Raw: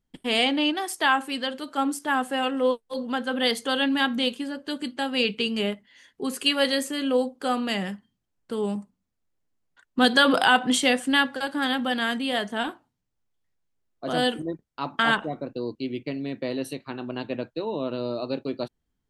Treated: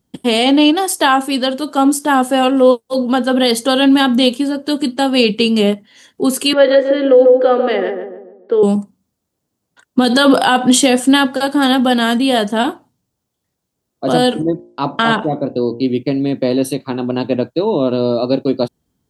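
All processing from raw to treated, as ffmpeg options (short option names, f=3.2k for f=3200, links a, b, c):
-filter_complex "[0:a]asettb=1/sr,asplit=3[a][b][c];[a]atrim=end=6.534[d];[b]atrim=start=6.53:end=8.63,asetpts=PTS-STARTPTS,afade=t=in:d=0.004:c=qsin,afade=t=out:st=2.096:d=0.004:c=qsin,highpass=f=340:w=0.5412,highpass=f=340:w=1.3066,equalizer=f=350:t=q:w=4:g=7,equalizer=f=500:t=q:w=4:g=6,equalizer=f=710:t=q:w=4:g=-3,equalizer=f=1k:t=q:w=4:g=-7,equalizer=f=1.8k:t=q:w=4:g=4,equalizer=f=2.7k:t=q:w=4:g=-7,lowpass=f=3k:w=0.5412,lowpass=f=3k:w=1.3066,asplit=2[e][f];[f]adelay=144,lowpass=f=1k:p=1,volume=-5dB,asplit=2[g][h];[h]adelay=144,lowpass=f=1k:p=1,volume=0.48,asplit=2[i][j];[j]adelay=144,lowpass=f=1k:p=1,volume=0.48,asplit=2[k][l];[l]adelay=144,lowpass=f=1k:p=1,volume=0.48,asplit=2[m][n];[n]adelay=144,lowpass=f=1k:p=1,volume=0.48,asplit=2[o][p];[p]adelay=144,lowpass=f=1k:p=1,volume=0.48[q];[e][g][i][k][m][o][q]amix=inputs=7:normalize=0,atrim=end_sample=92610[r];[c]atrim=start=8.626[s];[d][r]acrossfade=d=0.004:c1=hsin:c2=qsin[t];[t][s]acrossfade=d=0.004:c1=qsin:c2=hsin,asettb=1/sr,asplit=3[u][v][w];[u]atrim=end=14.294[x];[v]atrim=start=14.29:end=15.83,asetpts=PTS-STARTPTS,afade=t=in:d=0.004:c=qsin,afade=t=out:st=1.536:d=0.004:c=qsin,lowpass=9.6k,highshelf=f=7.1k:g=-6,bandreject=f=58.7:t=h:w=4,bandreject=f=117.4:t=h:w=4,bandreject=f=176.1:t=h:w=4,bandreject=f=234.8:t=h:w=4,bandreject=f=293.5:t=h:w=4,bandreject=f=352.2:t=h:w=4,bandreject=f=410.9:t=h:w=4,bandreject=f=469.6:t=h:w=4,bandreject=f=528.3:t=h:w=4,bandreject=f=587:t=h:w=4,bandreject=f=645.7:t=h:w=4,bandreject=f=704.4:t=h:w=4,bandreject=f=763.1:t=h:w=4,bandreject=f=821.8:t=h:w=4,bandreject=f=880.5:t=h:w=4,bandreject=f=939.2:t=h:w=4,bandreject=f=997.9:t=h:w=4[y];[w]atrim=start=15.826[z];[x][y]acrossfade=d=0.004:c1=hsin:c2=qsin[aa];[aa][z]acrossfade=d=0.004:c1=qsin:c2=hsin,highpass=84,equalizer=f=2k:t=o:w=1.6:g=-9,alimiter=level_in=16dB:limit=-1dB:release=50:level=0:latency=1,volume=-1dB"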